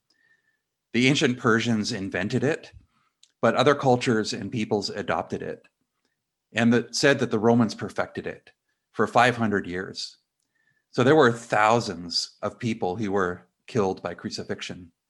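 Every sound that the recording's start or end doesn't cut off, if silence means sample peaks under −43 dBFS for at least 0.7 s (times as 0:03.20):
0:00.94–0:05.58
0:06.54–0:10.12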